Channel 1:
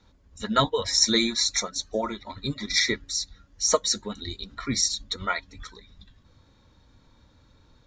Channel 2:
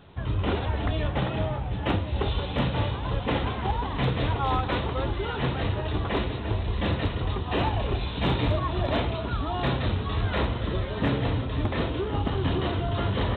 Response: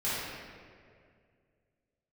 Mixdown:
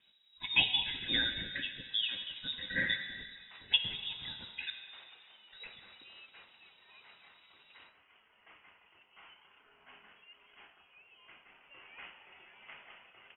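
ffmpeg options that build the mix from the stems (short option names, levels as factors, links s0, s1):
-filter_complex "[0:a]volume=0.501,asplit=3[s0][s1][s2];[s0]atrim=end=4.7,asetpts=PTS-STARTPTS,afade=t=out:st=4.696:d=0.004:c=hsin[s3];[s1]atrim=start=4.7:end=5.52,asetpts=PTS-STARTPTS,volume=0[s4];[s2]atrim=start=5.52,asetpts=PTS-STARTPTS,afade=t=in:d=0.004:c=hsin[s5];[s3][s4][s5]concat=n=3:v=0:a=1,asplit=2[s6][s7];[s7]volume=0.2[s8];[1:a]highpass=f=1100:w=0.5412,highpass=f=1100:w=1.3066,adelay=1650,volume=0.168,afade=t=in:st=11.48:d=0.37:silence=0.446684[s9];[2:a]atrim=start_sample=2205[s10];[s8][s10]afir=irnorm=-1:irlink=0[s11];[s6][s9][s11]amix=inputs=3:normalize=0,lowshelf=f=290:g=-7,lowpass=f=3300:t=q:w=0.5098,lowpass=f=3300:t=q:w=0.6013,lowpass=f=3300:t=q:w=0.9,lowpass=f=3300:t=q:w=2.563,afreqshift=-3900"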